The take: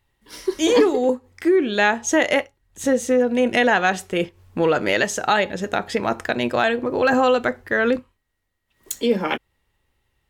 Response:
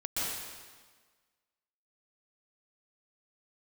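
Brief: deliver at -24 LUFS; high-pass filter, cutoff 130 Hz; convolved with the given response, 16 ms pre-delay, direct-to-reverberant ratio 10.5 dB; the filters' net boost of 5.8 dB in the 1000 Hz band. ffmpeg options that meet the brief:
-filter_complex "[0:a]highpass=130,equalizer=f=1k:t=o:g=8,asplit=2[a][b];[1:a]atrim=start_sample=2205,adelay=16[c];[b][c]afir=irnorm=-1:irlink=0,volume=-17dB[d];[a][d]amix=inputs=2:normalize=0,volume=-6dB"

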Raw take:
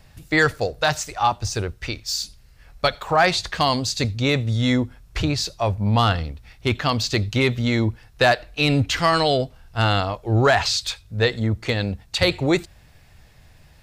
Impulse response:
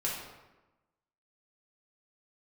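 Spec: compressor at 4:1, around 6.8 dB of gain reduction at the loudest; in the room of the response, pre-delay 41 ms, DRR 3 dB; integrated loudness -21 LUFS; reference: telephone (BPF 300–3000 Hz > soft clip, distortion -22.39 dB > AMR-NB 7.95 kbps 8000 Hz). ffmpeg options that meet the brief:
-filter_complex "[0:a]acompressor=threshold=-21dB:ratio=4,asplit=2[a][b];[1:a]atrim=start_sample=2205,adelay=41[c];[b][c]afir=irnorm=-1:irlink=0,volume=-8.5dB[d];[a][d]amix=inputs=2:normalize=0,highpass=300,lowpass=3k,asoftclip=threshold=-13.5dB,volume=9dB" -ar 8000 -c:a libopencore_amrnb -b:a 7950

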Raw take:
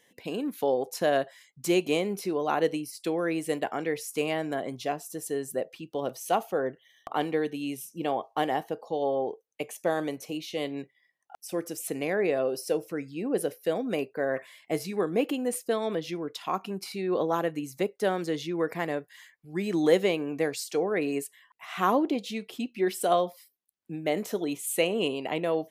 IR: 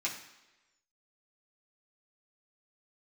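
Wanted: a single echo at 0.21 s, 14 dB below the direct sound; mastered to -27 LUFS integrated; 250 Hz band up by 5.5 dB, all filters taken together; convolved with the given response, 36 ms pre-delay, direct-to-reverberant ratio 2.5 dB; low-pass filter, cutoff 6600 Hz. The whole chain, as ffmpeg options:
-filter_complex "[0:a]lowpass=6.6k,equalizer=f=250:t=o:g=7.5,aecho=1:1:210:0.2,asplit=2[a][b];[1:a]atrim=start_sample=2205,adelay=36[c];[b][c]afir=irnorm=-1:irlink=0,volume=-7dB[d];[a][d]amix=inputs=2:normalize=0,volume=-1.5dB"

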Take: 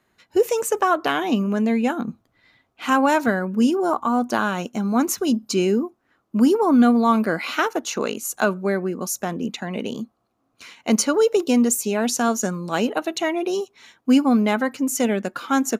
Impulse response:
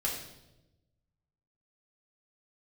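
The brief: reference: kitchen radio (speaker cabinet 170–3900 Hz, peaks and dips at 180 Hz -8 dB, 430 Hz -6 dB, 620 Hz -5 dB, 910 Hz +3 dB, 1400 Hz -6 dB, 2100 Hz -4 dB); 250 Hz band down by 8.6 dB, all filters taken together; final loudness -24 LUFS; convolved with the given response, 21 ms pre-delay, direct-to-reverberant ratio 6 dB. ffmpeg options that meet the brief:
-filter_complex "[0:a]equalizer=f=250:t=o:g=-6.5,asplit=2[a][b];[1:a]atrim=start_sample=2205,adelay=21[c];[b][c]afir=irnorm=-1:irlink=0,volume=-11dB[d];[a][d]amix=inputs=2:normalize=0,highpass=170,equalizer=f=180:t=q:w=4:g=-8,equalizer=f=430:t=q:w=4:g=-6,equalizer=f=620:t=q:w=4:g=-5,equalizer=f=910:t=q:w=4:g=3,equalizer=f=1.4k:t=q:w=4:g=-6,equalizer=f=2.1k:t=q:w=4:g=-4,lowpass=f=3.9k:w=0.5412,lowpass=f=3.9k:w=1.3066,volume=2dB"

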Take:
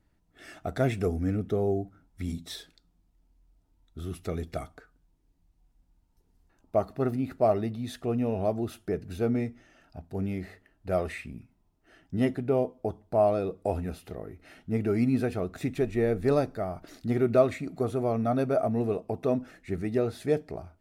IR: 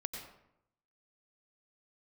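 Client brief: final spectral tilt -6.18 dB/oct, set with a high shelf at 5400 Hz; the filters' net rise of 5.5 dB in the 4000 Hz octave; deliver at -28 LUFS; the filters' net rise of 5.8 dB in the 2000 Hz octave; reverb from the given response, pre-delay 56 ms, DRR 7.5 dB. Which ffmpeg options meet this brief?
-filter_complex "[0:a]equalizer=f=2k:t=o:g=6,equalizer=f=4k:t=o:g=6,highshelf=f=5.4k:g=-3.5,asplit=2[a][b];[1:a]atrim=start_sample=2205,adelay=56[c];[b][c]afir=irnorm=-1:irlink=0,volume=-7.5dB[d];[a][d]amix=inputs=2:normalize=0,volume=0.5dB"

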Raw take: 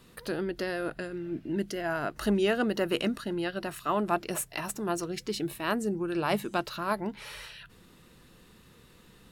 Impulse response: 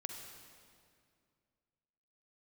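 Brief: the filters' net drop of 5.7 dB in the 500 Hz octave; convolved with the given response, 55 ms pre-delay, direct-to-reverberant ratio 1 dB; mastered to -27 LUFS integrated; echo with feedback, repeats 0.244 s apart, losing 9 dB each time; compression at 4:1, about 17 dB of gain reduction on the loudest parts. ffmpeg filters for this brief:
-filter_complex "[0:a]equalizer=f=500:t=o:g=-8.5,acompressor=threshold=-46dB:ratio=4,aecho=1:1:244|488|732|976:0.355|0.124|0.0435|0.0152,asplit=2[a][b];[1:a]atrim=start_sample=2205,adelay=55[c];[b][c]afir=irnorm=-1:irlink=0,volume=0.5dB[d];[a][d]amix=inputs=2:normalize=0,volume=17.5dB"

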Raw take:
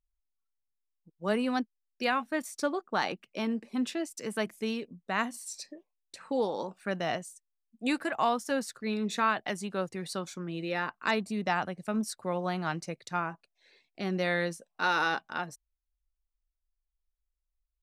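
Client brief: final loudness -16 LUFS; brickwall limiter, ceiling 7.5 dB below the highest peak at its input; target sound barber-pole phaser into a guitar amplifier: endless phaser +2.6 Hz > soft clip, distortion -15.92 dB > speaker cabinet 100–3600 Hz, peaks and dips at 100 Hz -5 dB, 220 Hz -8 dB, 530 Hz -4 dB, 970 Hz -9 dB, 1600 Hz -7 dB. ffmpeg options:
-filter_complex "[0:a]alimiter=limit=-21dB:level=0:latency=1,asplit=2[a][b];[b]afreqshift=2.6[c];[a][c]amix=inputs=2:normalize=1,asoftclip=threshold=-29dB,highpass=100,equalizer=f=100:t=q:w=4:g=-5,equalizer=f=220:t=q:w=4:g=-8,equalizer=f=530:t=q:w=4:g=-4,equalizer=f=970:t=q:w=4:g=-9,equalizer=f=1.6k:t=q:w=4:g=-7,lowpass=f=3.6k:w=0.5412,lowpass=f=3.6k:w=1.3066,volume=27dB"

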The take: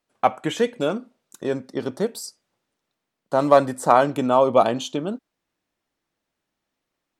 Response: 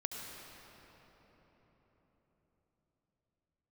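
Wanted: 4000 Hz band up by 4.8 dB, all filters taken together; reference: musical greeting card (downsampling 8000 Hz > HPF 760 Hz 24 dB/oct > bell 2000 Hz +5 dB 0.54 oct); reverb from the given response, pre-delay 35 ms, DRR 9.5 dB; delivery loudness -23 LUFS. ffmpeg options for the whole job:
-filter_complex "[0:a]equalizer=f=4k:t=o:g=5.5,asplit=2[a][b];[1:a]atrim=start_sample=2205,adelay=35[c];[b][c]afir=irnorm=-1:irlink=0,volume=-10.5dB[d];[a][d]amix=inputs=2:normalize=0,aresample=8000,aresample=44100,highpass=f=760:w=0.5412,highpass=f=760:w=1.3066,equalizer=f=2k:t=o:w=0.54:g=5,volume=1.5dB"

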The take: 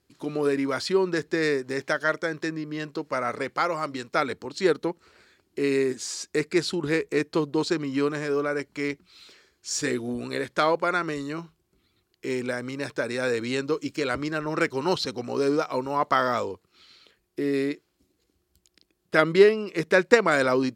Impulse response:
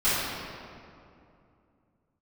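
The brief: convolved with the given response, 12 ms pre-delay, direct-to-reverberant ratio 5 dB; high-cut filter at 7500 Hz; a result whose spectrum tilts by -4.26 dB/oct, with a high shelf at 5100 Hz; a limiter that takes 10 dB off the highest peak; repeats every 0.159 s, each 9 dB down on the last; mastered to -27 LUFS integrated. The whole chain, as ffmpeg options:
-filter_complex "[0:a]lowpass=7.5k,highshelf=f=5.1k:g=-7.5,alimiter=limit=-12.5dB:level=0:latency=1,aecho=1:1:159|318|477|636:0.355|0.124|0.0435|0.0152,asplit=2[a][b];[1:a]atrim=start_sample=2205,adelay=12[c];[b][c]afir=irnorm=-1:irlink=0,volume=-20.5dB[d];[a][d]amix=inputs=2:normalize=0,volume=-1dB"

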